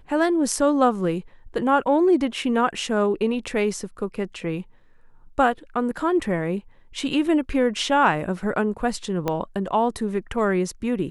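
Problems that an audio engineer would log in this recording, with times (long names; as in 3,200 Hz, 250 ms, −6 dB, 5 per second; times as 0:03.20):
0:09.28: click −11 dBFS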